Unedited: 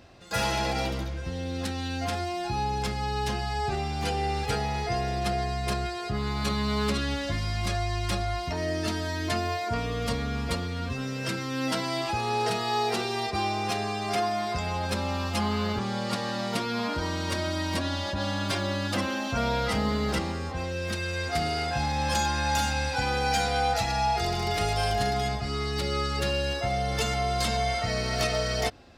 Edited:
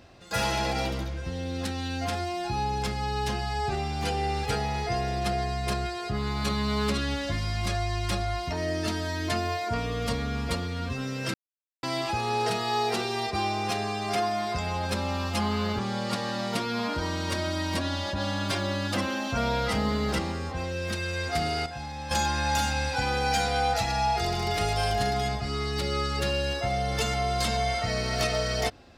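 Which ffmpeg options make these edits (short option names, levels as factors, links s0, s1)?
-filter_complex "[0:a]asplit=5[s0][s1][s2][s3][s4];[s0]atrim=end=11.34,asetpts=PTS-STARTPTS,afade=t=out:st=11.336:d=0.004:c=hsin[s5];[s1]atrim=start=11.34:end=11.83,asetpts=PTS-STARTPTS,volume=0[s6];[s2]atrim=start=11.83:end=21.662,asetpts=PTS-STARTPTS,afade=t=in:d=0.004:c=hsin[s7];[s3]atrim=start=21.658:end=22.112,asetpts=PTS-STARTPTS,volume=0.355[s8];[s4]atrim=start=22.108[s9];[s5][s6][s7]concat=n=3:v=0:a=1[s10];[s10][s8]acrossfade=d=0.004:c1=hsin:c2=hsin[s11];[s11][s9]acrossfade=d=0.004:c1=hsin:c2=hsin"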